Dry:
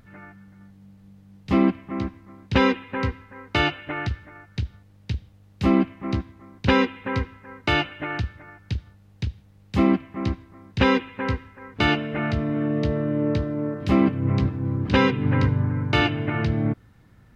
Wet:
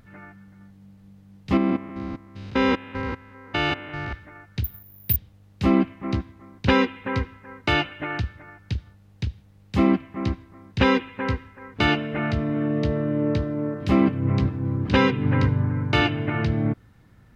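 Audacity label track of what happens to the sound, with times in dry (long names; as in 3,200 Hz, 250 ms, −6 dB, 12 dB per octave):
1.570000	4.130000	spectrum averaged block by block every 200 ms
4.640000	5.160000	bad sample-rate conversion rate divided by 3×, down filtered, up zero stuff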